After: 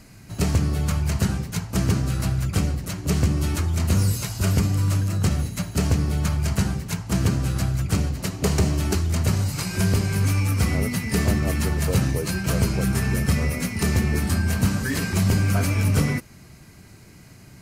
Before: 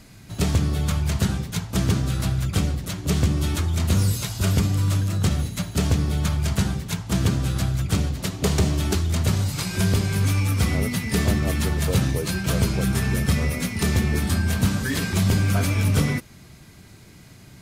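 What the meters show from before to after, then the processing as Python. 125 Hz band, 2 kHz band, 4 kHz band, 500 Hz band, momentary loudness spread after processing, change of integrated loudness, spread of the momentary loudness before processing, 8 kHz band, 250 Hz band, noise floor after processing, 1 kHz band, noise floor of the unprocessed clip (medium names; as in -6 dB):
0.0 dB, -0.5 dB, -2.5 dB, 0.0 dB, 4 LU, 0.0 dB, 4 LU, 0.0 dB, 0.0 dB, -47 dBFS, 0.0 dB, -47 dBFS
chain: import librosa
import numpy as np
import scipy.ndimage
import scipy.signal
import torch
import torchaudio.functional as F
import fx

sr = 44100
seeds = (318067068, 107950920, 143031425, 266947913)

y = fx.peak_eq(x, sr, hz=3500.0, db=-9.5, octaves=0.24)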